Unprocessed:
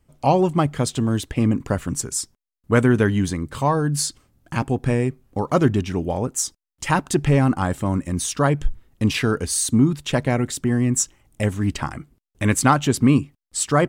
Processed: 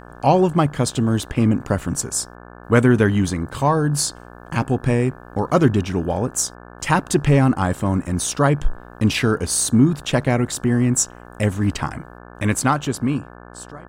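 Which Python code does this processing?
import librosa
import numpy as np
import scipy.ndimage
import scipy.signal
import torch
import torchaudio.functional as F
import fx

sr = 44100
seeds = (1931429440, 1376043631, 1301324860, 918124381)

y = fx.fade_out_tail(x, sr, length_s=1.92)
y = fx.dmg_buzz(y, sr, base_hz=60.0, harmonics=29, level_db=-43.0, tilt_db=-2, odd_only=False)
y = y * 10.0 ** (2.0 / 20.0)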